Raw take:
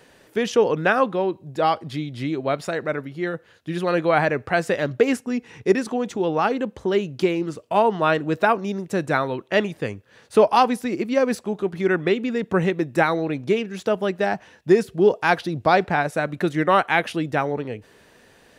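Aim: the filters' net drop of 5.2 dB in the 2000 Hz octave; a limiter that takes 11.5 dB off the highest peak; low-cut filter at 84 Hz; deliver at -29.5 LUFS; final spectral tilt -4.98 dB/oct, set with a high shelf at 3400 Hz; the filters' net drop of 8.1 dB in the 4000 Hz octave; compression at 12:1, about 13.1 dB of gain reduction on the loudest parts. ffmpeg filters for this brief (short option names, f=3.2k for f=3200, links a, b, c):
-af "highpass=84,equalizer=f=2k:t=o:g=-5,highshelf=f=3.4k:g=-3,equalizer=f=4k:t=o:g=-7,acompressor=threshold=-24dB:ratio=12,volume=5dB,alimiter=limit=-19.5dB:level=0:latency=1"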